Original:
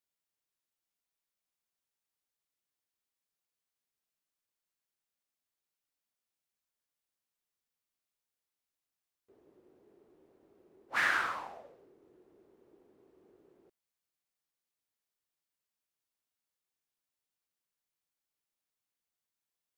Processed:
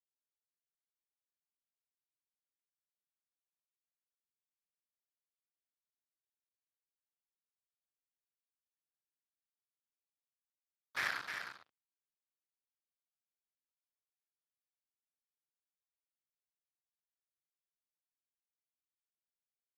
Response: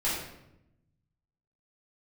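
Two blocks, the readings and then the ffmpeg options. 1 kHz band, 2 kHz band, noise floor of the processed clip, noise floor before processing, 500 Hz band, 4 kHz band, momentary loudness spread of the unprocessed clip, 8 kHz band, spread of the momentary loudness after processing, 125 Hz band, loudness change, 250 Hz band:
-10.5 dB, -7.5 dB, under -85 dBFS, under -85 dBFS, -10.0 dB, -3.5 dB, 15 LU, -4.0 dB, 13 LU, no reading, -7.5 dB, -10.5 dB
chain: -filter_complex "[0:a]aemphasis=mode=reproduction:type=75fm,bandreject=f=2800:w=5.7,acrossover=split=2500[s0][s1];[s0]asoftclip=type=tanh:threshold=0.0224[s2];[s2][s1]amix=inputs=2:normalize=0,acrusher=bits=4:mix=0:aa=0.5,asplit=2[s3][s4];[s4]aecho=0:1:310:0.473[s5];[s3][s5]amix=inputs=2:normalize=0,volume=1.26" -ar 32000 -c:a libspeex -b:a 28k

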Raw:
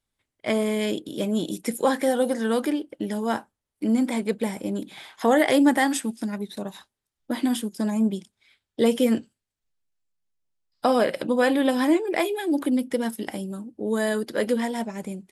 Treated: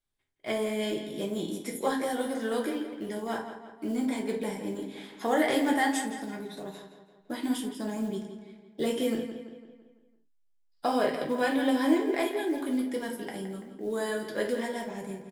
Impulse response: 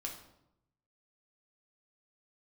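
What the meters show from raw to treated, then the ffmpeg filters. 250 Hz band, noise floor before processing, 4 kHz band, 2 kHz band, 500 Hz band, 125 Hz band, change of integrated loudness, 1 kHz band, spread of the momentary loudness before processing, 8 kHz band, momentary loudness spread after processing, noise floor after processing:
-6.5 dB, -85 dBFS, -4.5 dB, -4.5 dB, -6.0 dB, -7.5 dB, -6.0 dB, -4.5 dB, 12 LU, -5.5 dB, 14 LU, -66 dBFS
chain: -filter_complex "[0:a]acrusher=bits=8:mode=log:mix=0:aa=0.000001,asplit=2[s0][s1];[s1]adelay=168,lowpass=f=4500:p=1,volume=0.335,asplit=2[s2][s3];[s3]adelay=168,lowpass=f=4500:p=1,volume=0.51,asplit=2[s4][s5];[s5]adelay=168,lowpass=f=4500:p=1,volume=0.51,asplit=2[s6][s7];[s7]adelay=168,lowpass=f=4500:p=1,volume=0.51,asplit=2[s8][s9];[s9]adelay=168,lowpass=f=4500:p=1,volume=0.51,asplit=2[s10][s11];[s11]adelay=168,lowpass=f=4500:p=1,volume=0.51[s12];[s0][s2][s4][s6][s8][s10][s12]amix=inputs=7:normalize=0[s13];[1:a]atrim=start_sample=2205,atrim=end_sample=6174,asetrate=61740,aresample=44100[s14];[s13][s14]afir=irnorm=-1:irlink=0,volume=0.841"

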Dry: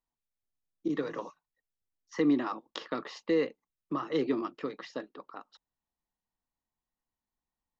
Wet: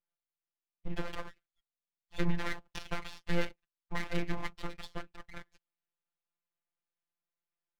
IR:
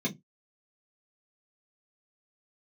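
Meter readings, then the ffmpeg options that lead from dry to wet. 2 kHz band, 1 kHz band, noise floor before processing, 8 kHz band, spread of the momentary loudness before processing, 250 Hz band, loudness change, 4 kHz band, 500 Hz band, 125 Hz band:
+2.5 dB, -4.5 dB, under -85 dBFS, no reading, 18 LU, -9.0 dB, -6.5 dB, -0.5 dB, -10.0 dB, +7.0 dB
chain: -af "lowshelf=f=440:g=-7,highpass=f=200:t=q:w=0.5412,highpass=f=200:t=q:w=1.307,lowpass=f=3000:t=q:w=0.5176,lowpass=f=3000:t=q:w=0.7071,lowpass=f=3000:t=q:w=1.932,afreqshift=-210,aeval=exprs='abs(val(0))':c=same,afftfilt=real='hypot(re,im)*cos(PI*b)':imag='0':win_size=1024:overlap=0.75,adynamicequalizer=threshold=0.002:dfrequency=1900:dqfactor=0.7:tfrequency=1900:tqfactor=0.7:attack=5:release=100:ratio=0.375:range=2.5:mode=boostabove:tftype=highshelf,volume=1.78"

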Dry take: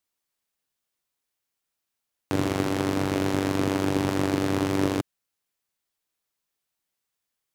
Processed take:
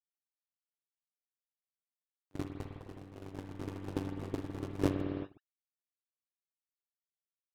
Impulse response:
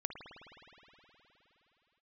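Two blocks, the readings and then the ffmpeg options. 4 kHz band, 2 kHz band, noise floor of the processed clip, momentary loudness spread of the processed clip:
-19.0 dB, -19.0 dB, under -85 dBFS, 15 LU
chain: -filter_complex "[0:a]agate=range=0.00224:threshold=0.112:ratio=16:detection=peak[s0];[1:a]atrim=start_sample=2205,afade=t=out:st=0.44:d=0.01,atrim=end_sample=19845[s1];[s0][s1]afir=irnorm=-1:irlink=0,volume=2.66"

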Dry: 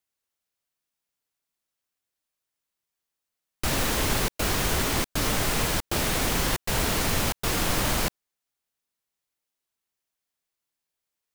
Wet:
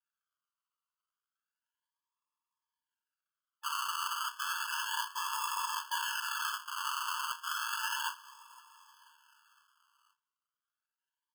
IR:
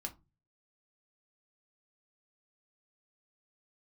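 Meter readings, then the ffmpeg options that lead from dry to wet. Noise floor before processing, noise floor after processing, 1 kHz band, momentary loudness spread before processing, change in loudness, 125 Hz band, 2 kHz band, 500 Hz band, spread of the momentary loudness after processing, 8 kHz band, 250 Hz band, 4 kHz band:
under -85 dBFS, under -85 dBFS, -3.5 dB, 2 LU, -9.5 dB, under -40 dB, -6.5 dB, under -40 dB, 4 LU, -11.5 dB, under -40 dB, -8.0 dB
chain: -filter_complex "[0:a]aecho=1:1:506|1012|1518|2024:0.0891|0.049|0.027|0.0148[s0];[1:a]atrim=start_sample=2205[s1];[s0][s1]afir=irnorm=-1:irlink=0,acrusher=samples=41:mix=1:aa=0.000001:lfo=1:lforange=24.6:lforate=0.32,afftfilt=real='re*eq(mod(floor(b*sr/1024/870),2),1)':imag='im*eq(mod(floor(b*sr/1024/870),2),1)':win_size=1024:overlap=0.75,volume=1.5"

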